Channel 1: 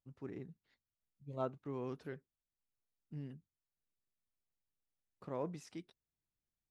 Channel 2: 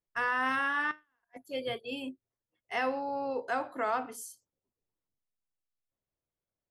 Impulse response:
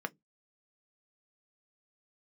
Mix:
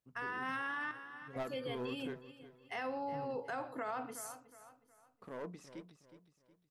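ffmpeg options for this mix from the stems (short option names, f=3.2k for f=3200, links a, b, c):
-filter_complex "[0:a]asoftclip=type=hard:threshold=-37dB,volume=1.5dB,asplit=3[a][b][c];[b]volume=-12.5dB[d];[c]volume=-16dB[e];[1:a]equalizer=f=120:t=o:w=0.77:g=8.5,volume=-3dB,asplit=3[f][g][h];[g]volume=-17.5dB[i];[h]apad=whole_len=295847[j];[a][j]sidechaingate=range=-6dB:threshold=-53dB:ratio=16:detection=peak[k];[2:a]atrim=start_sample=2205[l];[d][l]afir=irnorm=-1:irlink=0[m];[e][i]amix=inputs=2:normalize=0,aecho=0:1:366|732|1098|1464|1830:1|0.36|0.13|0.0467|0.0168[n];[k][f][m][n]amix=inputs=4:normalize=0,alimiter=level_in=7.5dB:limit=-24dB:level=0:latency=1:release=58,volume=-7.5dB"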